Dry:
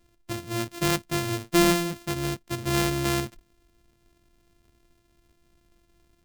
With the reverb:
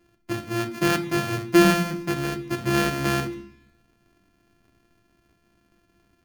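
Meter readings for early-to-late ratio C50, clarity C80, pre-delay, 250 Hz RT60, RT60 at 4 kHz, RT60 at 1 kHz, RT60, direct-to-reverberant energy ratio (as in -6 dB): 13.5 dB, 16.5 dB, 3 ms, 0.90 s, 0.95 s, 0.70 s, 0.70 s, 5.5 dB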